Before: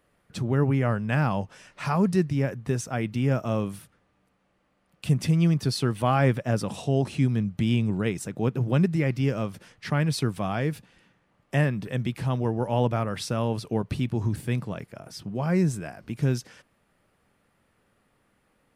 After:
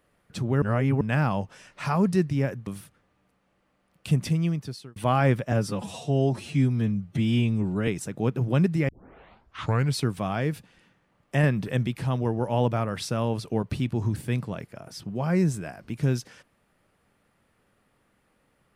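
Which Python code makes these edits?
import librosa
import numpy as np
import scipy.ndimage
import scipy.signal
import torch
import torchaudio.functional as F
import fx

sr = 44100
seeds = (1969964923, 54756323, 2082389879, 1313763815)

y = fx.edit(x, sr, fx.reverse_span(start_s=0.62, length_s=0.39),
    fx.cut(start_s=2.67, length_s=0.98),
    fx.fade_out_span(start_s=5.12, length_s=0.82),
    fx.stretch_span(start_s=6.5, length_s=1.57, factor=1.5),
    fx.tape_start(start_s=9.08, length_s=1.09),
    fx.clip_gain(start_s=11.63, length_s=0.42, db=3.0), tone=tone)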